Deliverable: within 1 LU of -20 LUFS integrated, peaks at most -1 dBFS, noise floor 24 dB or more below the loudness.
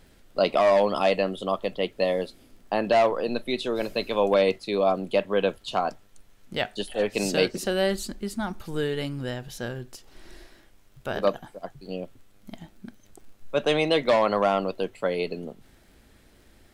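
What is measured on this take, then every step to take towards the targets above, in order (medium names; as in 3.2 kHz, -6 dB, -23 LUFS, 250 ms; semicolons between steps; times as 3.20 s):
tick rate 22 per s; loudness -26.0 LUFS; peak level -8.0 dBFS; loudness target -20.0 LUFS
-> de-click; trim +6 dB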